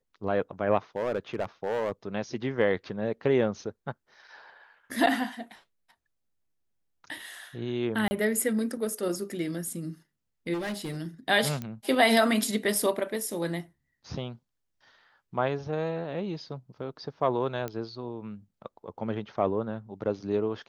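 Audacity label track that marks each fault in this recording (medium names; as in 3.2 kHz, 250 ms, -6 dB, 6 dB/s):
0.960000	1.920000	clipped -24 dBFS
8.080000	8.110000	dropout 30 ms
10.530000	10.970000	clipped -29.5 dBFS
11.620000	11.620000	pop -21 dBFS
17.680000	17.680000	pop -20 dBFS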